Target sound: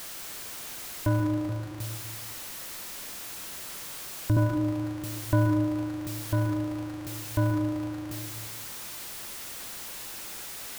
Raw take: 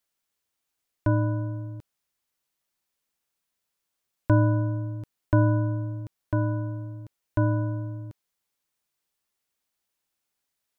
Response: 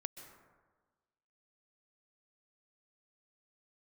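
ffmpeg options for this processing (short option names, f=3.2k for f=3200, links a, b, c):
-filter_complex "[0:a]aeval=exprs='val(0)+0.5*0.0316*sgn(val(0))':c=same,asettb=1/sr,asplit=3[a][b][c];[a]atrim=end=1.494[d];[b]atrim=start=1.49:end=4.37,asetpts=PTS-STARTPTS,afade=t=in:d=0.004:c=qsin,afade=t=out:st=2.876:d=0.004:c=qsin,acrossover=split=340|3000[e][f][g];[f]acompressor=threshold=-38dB:ratio=6[h];[e][h][g]amix=inputs=3:normalize=0[i];[c]atrim=start=4.366[j];[d][i]acrossfade=d=0.004:c1=hsin:c2=qsin[k];[k][j]acrossfade=d=0.004:c1=qsin:c2=hsin[l];[1:a]atrim=start_sample=2205[m];[l][m]afir=irnorm=-1:irlink=0"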